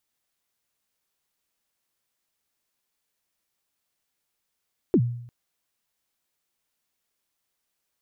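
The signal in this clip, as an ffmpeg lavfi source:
-f lavfi -i "aevalsrc='0.224*pow(10,-3*t/0.69)*sin(2*PI*(420*0.064/log(120/420)*(exp(log(120/420)*min(t,0.064)/0.064)-1)+120*max(t-0.064,0)))':d=0.35:s=44100"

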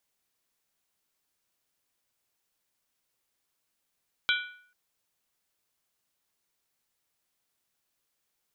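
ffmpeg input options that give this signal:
-f lavfi -i "aevalsrc='0.0668*pow(10,-3*t/0.58)*sin(2*PI*1470*t)+0.0562*pow(10,-3*t/0.459)*sin(2*PI*2343.2*t)+0.0473*pow(10,-3*t/0.397)*sin(2*PI*3139.9*t)+0.0398*pow(10,-3*t/0.383)*sin(2*PI*3375.1*t)+0.0335*pow(10,-3*t/0.356)*sin(2*PI*3899.9*t)':d=0.44:s=44100"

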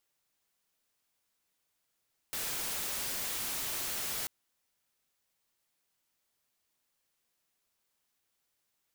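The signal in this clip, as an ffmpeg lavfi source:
-f lavfi -i "anoisesrc=c=white:a=0.0274:d=1.94:r=44100:seed=1"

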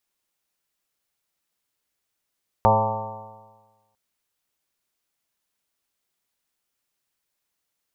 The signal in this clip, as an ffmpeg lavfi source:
-f lavfi -i "aevalsrc='0.0944*pow(10,-3*t/1.32)*sin(2*PI*106.11*t)+0.0531*pow(10,-3*t/1.32)*sin(2*PI*212.85*t)+0.0119*pow(10,-3*t/1.32)*sin(2*PI*320.85*t)+0.0422*pow(10,-3*t/1.32)*sin(2*PI*430.73*t)+0.106*pow(10,-3*t/1.32)*sin(2*PI*543.09*t)+0.075*pow(10,-3*t/1.32)*sin(2*PI*658.5*t)+0.106*pow(10,-3*t/1.32)*sin(2*PI*777.51*t)+0.168*pow(10,-3*t/1.32)*sin(2*PI*900.64*t)+0.0398*pow(10,-3*t/1.32)*sin(2*PI*1028.37*t)+0.0531*pow(10,-3*t/1.32)*sin(2*PI*1161.17*t)':d=1.3:s=44100"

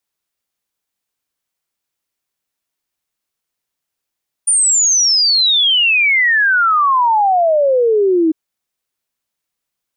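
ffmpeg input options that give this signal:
-f lavfi -i "aevalsrc='0.335*clip(min(t,3.85-t)/0.01,0,1)*sin(2*PI*9400*3.85/log(310/9400)*(exp(log(310/9400)*t/3.85)-1))':d=3.85:s=44100"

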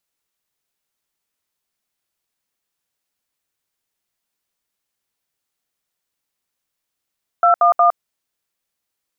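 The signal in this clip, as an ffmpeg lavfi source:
-f lavfi -i "aevalsrc='0.251*clip(min(mod(t,0.181),0.111-mod(t,0.181))/0.002,0,1)*(eq(floor(t/0.181),0)*(sin(2*PI*697*mod(t,0.181))+sin(2*PI*1336*mod(t,0.181)))+eq(floor(t/0.181),1)*(sin(2*PI*697*mod(t,0.181))+sin(2*PI*1209*mod(t,0.181)))+eq(floor(t/0.181),2)*(sin(2*PI*697*mod(t,0.181))+sin(2*PI*1209*mod(t,0.181))))':d=0.543:s=44100"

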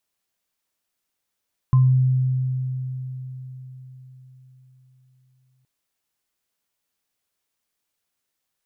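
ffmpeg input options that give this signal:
-f lavfi -i "aevalsrc='0.282*pow(10,-3*t/4.58)*sin(2*PI*129*t)+0.0447*pow(10,-3*t/0.29)*sin(2*PI*1040*t)':d=3.92:s=44100"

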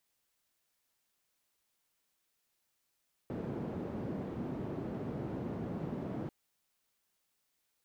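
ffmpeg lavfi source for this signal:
-f lavfi -i "anoisesrc=c=white:d=2.99:r=44100:seed=1,highpass=f=120,lowpass=f=290,volume=-13.7dB"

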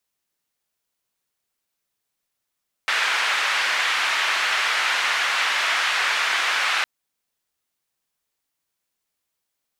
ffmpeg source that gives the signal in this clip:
-f lavfi -i "anoisesrc=c=white:d=3.96:r=44100:seed=1,highpass=f=1500,lowpass=f=1900,volume=-2.3dB"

